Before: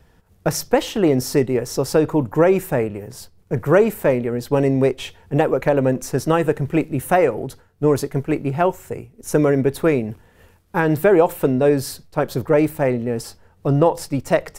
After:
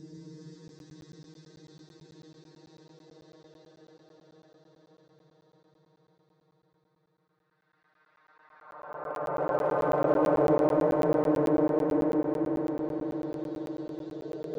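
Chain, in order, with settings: vocoder on a gliding note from C4, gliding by -11 st; low-pass opened by the level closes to 1600 Hz, open at -14 dBFS; tilt +4 dB/oct; auto-wah 340–2200 Hz, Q 3.3, down, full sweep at -25.5 dBFS; Paulstretch 29×, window 0.10 s, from 11.85; flange 0.38 Hz, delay 8.8 ms, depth 4.8 ms, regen -75%; in parallel at -10 dB: hard clip -38 dBFS, distortion -9 dB; on the sum: swelling echo 92 ms, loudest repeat 8, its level -14.5 dB; on a send at -2 dB: reverb RT60 0.55 s, pre-delay 0.108 s; on the sum: crackling interface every 0.11 s, samples 512, zero, from 0.68; gain +8 dB

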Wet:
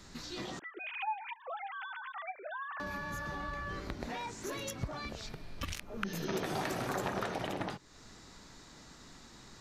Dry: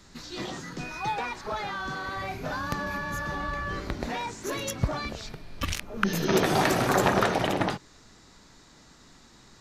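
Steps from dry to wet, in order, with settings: 0.59–2.8 sine-wave speech; compressor 2:1, threshold -43 dBFS, peak gain reduction 14 dB

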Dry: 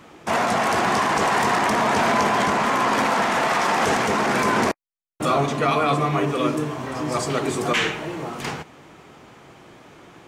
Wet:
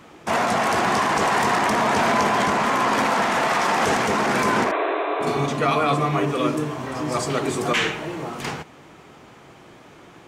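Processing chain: 4.74–5.39 spectral repair 290–4100 Hz both; 4.63–5.27 tone controls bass -9 dB, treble -10 dB

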